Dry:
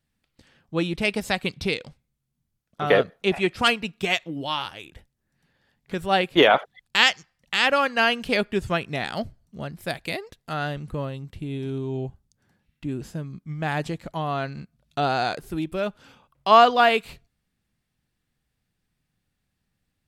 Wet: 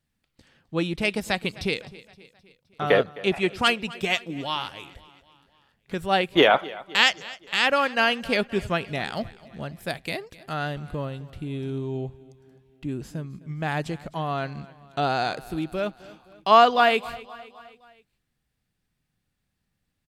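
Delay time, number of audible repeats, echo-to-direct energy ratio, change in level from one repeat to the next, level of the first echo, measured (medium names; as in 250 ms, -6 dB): 260 ms, 3, -18.5 dB, -5.0 dB, -20.0 dB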